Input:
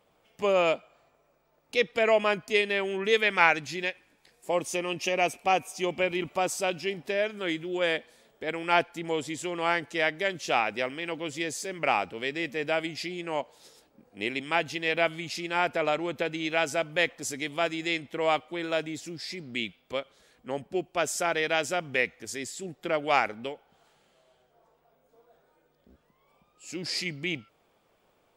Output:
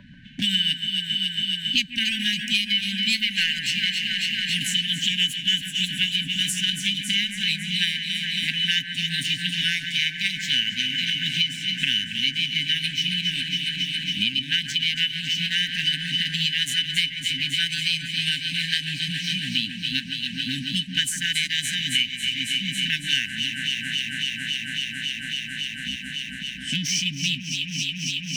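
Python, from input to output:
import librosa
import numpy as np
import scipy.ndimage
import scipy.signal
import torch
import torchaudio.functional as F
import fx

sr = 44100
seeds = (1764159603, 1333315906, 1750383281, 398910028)

p1 = scipy.ndimage.median_filter(x, 3, mode='constant')
p2 = fx.env_lowpass(p1, sr, base_hz=1100.0, full_db=-22.5)
p3 = fx.bass_treble(p2, sr, bass_db=3, treble_db=7)
p4 = fx.formant_shift(p3, sr, semitones=3)
p5 = fx.leveller(p4, sr, passes=1)
p6 = fx.brickwall_bandstop(p5, sr, low_hz=280.0, high_hz=1500.0)
p7 = fx.small_body(p6, sr, hz=(580.0, 980.0, 3000.0), ring_ms=90, db=16)
p8 = p7 + fx.echo_alternate(p7, sr, ms=138, hz=2100.0, feedback_pct=85, wet_db=-7.5, dry=0)
y = fx.band_squash(p8, sr, depth_pct=100)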